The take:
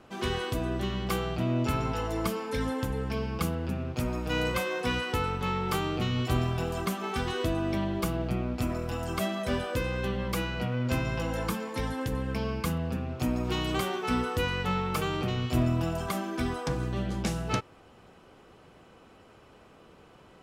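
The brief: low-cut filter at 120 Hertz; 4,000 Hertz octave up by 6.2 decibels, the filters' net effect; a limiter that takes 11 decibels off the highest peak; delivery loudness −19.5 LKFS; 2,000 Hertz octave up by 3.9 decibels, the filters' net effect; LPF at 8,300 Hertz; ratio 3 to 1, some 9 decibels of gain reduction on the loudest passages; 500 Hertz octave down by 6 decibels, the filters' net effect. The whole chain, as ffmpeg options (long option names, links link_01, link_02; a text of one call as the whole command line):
ffmpeg -i in.wav -af "highpass=120,lowpass=8300,equalizer=frequency=500:width_type=o:gain=-8,equalizer=frequency=2000:width_type=o:gain=3.5,equalizer=frequency=4000:width_type=o:gain=7.5,acompressor=threshold=-37dB:ratio=3,volume=20.5dB,alimiter=limit=-10dB:level=0:latency=1" out.wav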